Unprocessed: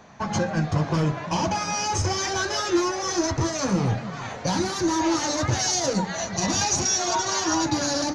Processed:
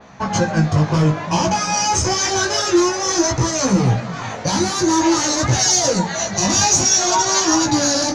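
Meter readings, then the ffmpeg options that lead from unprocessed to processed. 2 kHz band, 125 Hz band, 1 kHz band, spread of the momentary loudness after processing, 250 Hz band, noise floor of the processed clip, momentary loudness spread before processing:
+6.0 dB, +7.0 dB, +6.5 dB, 6 LU, +7.0 dB, −28 dBFS, 5 LU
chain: -af "flanger=delay=15.5:depth=4.3:speed=0.54,adynamicequalizer=threshold=0.00562:dfrequency=7500:dqfactor=1.2:tfrequency=7500:tqfactor=1.2:attack=5:release=100:ratio=0.375:range=2.5:mode=boostabove:tftype=bell,acontrast=67,volume=2.5dB"

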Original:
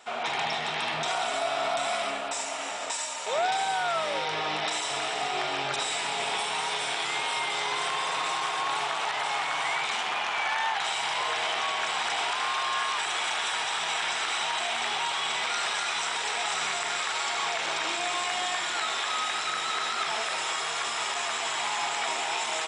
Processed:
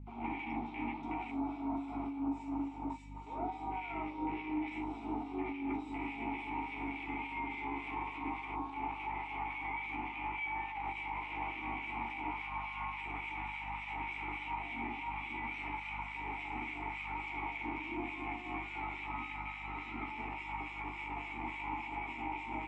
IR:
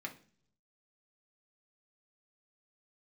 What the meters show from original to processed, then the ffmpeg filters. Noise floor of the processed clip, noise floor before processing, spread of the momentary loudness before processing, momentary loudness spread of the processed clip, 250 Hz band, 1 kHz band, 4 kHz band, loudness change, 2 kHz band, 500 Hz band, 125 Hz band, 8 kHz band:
−46 dBFS, −32 dBFS, 2 LU, 3 LU, +7.5 dB, −10.5 dB, −26.5 dB, −12.0 dB, −11.5 dB, −15.5 dB, +2.0 dB, below −40 dB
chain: -filter_complex "[0:a]asplit=2[link_01][link_02];[link_02]volume=26dB,asoftclip=hard,volume=-26dB,volume=-7.5dB[link_03];[link_01][link_03]amix=inputs=2:normalize=0,equalizer=frequency=250:width_type=o:width=1:gain=11,equalizer=frequency=1000:width_type=o:width=1:gain=-3,equalizer=frequency=8000:width_type=o:width=1:gain=4,afwtdn=0.0447,asplit=3[link_04][link_05][link_06];[link_04]bandpass=frequency=300:width_type=q:width=8,volume=0dB[link_07];[link_05]bandpass=frequency=870:width_type=q:width=8,volume=-6dB[link_08];[link_06]bandpass=frequency=2240:width_type=q:width=8,volume=-9dB[link_09];[link_07][link_08][link_09]amix=inputs=3:normalize=0,asplit=2[link_10][link_11];[1:a]atrim=start_sample=2205,adelay=14[link_12];[link_11][link_12]afir=irnorm=-1:irlink=0,volume=0dB[link_13];[link_10][link_13]amix=inputs=2:normalize=0,aeval=exprs='val(0)+0.00316*(sin(2*PI*50*n/s)+sin(2*PI*2*50*n/s)/2+sin(2*PI*3*50*n/s)/3+sin(2*PI*4*50*n/s)/4+sin(2*PI*5*50*n/s)/5)':channel_layout=same,alimiter=level_in=7.5dB:limit=-24dB:level=0:latency=1:release=58,volume=-7.5dB,acrossover=split=2000[link_14][link_15];[link_14]aeval=exprs='val(0)*(1-0.7/2+0.7/2*cos(2*PI*3.5*n/s))':channel_layout=same[link_16];[link_15]aeval=exprs='val(0)*(1-0.7/2-0.7/2*cos(2*PI*3.5*n/s))':channel_layout=same[link_17];[link_16][link_17]amix=inputs=2:normalize=0,volume=4dB"

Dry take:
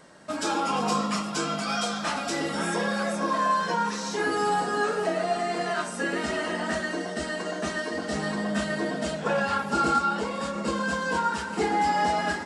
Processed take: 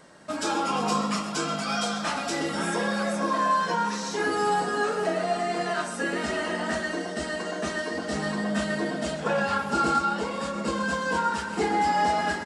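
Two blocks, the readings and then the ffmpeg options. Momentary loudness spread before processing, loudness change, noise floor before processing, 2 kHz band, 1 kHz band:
6 LU, 0.0 dB, −34 dBFS, 0.0 dB, +0.5 dB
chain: -af "aecho=1:1:130:0.2"

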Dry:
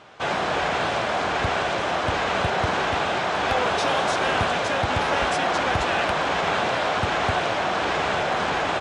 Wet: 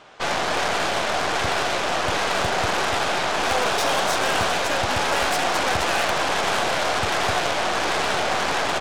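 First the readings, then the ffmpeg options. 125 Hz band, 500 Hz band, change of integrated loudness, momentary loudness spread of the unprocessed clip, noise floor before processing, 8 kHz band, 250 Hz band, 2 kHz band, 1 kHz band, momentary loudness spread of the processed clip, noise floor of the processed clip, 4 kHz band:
−3.0 dB, 0.0 dB, +1.0 dB, 2 LU, −25 dBFS, +8.5 dB, −1.0 dB, +1.0 dB, +0.5 dB, 2 LU, −24 dBFS, +3.5 dB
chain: -af "aeval=exprs='0.266*(cos(1*acos(clip(val(0)/0.266,-1,1)))-cos(1*PI/2))+0.0422*(cos(8*acos(clip(val(0)/0.266,-1,1)))-cos(8*PI/2))':channel_layout=same,bass=frequency=250:gain=-4,treble=frequency=4000:gain=3"

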